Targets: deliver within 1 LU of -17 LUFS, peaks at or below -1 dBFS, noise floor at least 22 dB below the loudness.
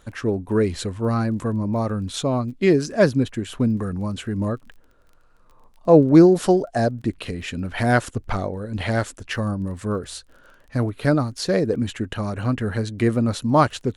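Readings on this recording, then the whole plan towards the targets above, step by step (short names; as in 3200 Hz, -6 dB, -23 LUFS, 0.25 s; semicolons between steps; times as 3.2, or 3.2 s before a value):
ticks 20/s; loudness -21.5 LUFS; peak -2.0 dBFS; loudness target -17.0 LUFS
-> de-click; gain +4.5 dB; limiter -1 dBFS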